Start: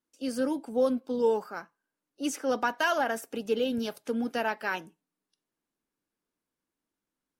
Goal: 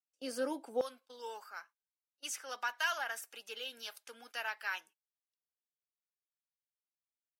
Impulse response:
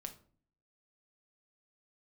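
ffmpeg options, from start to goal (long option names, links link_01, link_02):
-af "asetnsamples=nb_out_samples=441:pad=0,asendcmd='0.81 highpass f 1400',highpass=440,agate=range=-20dB:threshold=-55dB:ratio=16:detection=peak,volume=-3dB"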